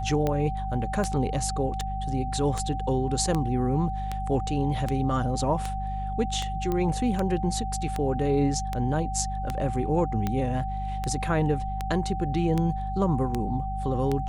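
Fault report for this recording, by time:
hum 50 Hz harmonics 4 -32 dBFS
tick 78 rpm -14 dBFS
tone 770 Hz -32 dBFS
6.72 pop -16 dBFS

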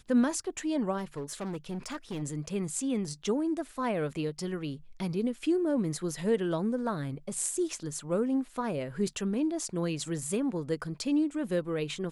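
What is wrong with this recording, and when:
0.97–2.23 clipped -32 dBFS

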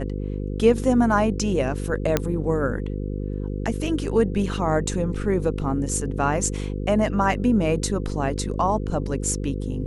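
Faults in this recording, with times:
buzz 50 Hz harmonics 10 -28 dBFS
2.17 pop -5 dBFS

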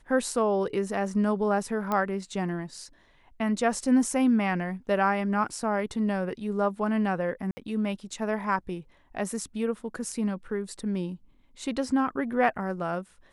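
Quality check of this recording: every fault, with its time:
1.92 pop -15 dBFS
7.51–7.57 gap 60 ms

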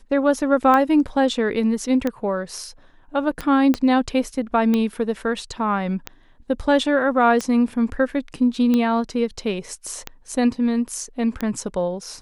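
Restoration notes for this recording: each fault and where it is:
tick 45 rpm -10 dBFS
3.74 pop -9 dBFS

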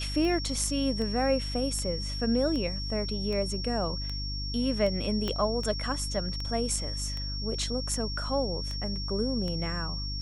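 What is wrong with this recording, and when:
hum 50 Hz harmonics 6 -35 dBFS
tick 78 rpm -23 dBFS
tone 5500 Hz -36 dBFS
5.28 pop -17 dBFS

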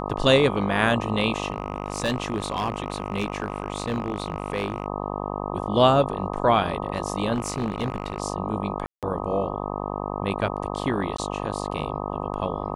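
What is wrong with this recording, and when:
buzz 50 Hz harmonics 25 -30 dBFS
1.5–4.86 clipped -19.5 dBFS
7.33–8.2 clipped -20.5 dBFS
8.86–9.03 gap 0.167 s
11.17–11.18 gap 14 ms

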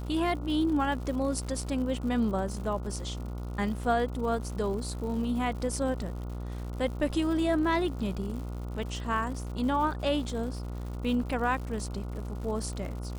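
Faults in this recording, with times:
buzz 60 Hz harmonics 24 -36 dBFS
crackle 160/s -39 dBFS

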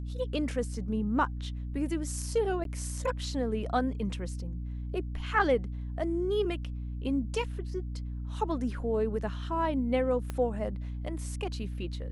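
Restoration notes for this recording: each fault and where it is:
hum 60 Hz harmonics 5 -36 dBFS
2.64–2.65 gap 12 ms
10.3 pop -21 dBFS

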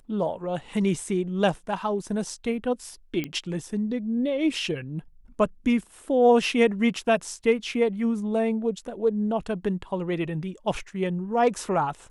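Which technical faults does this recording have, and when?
3.24 pop -16 dBFS

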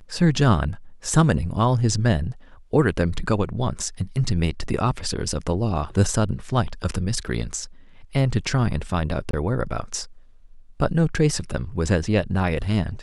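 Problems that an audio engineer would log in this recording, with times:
9.31–9.33 gap 23 ms

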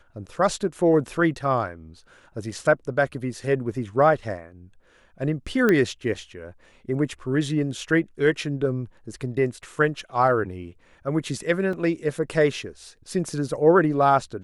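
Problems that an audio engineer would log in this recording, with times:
5.69 pop -9 dBFS
11.73 gap 2.8 ms

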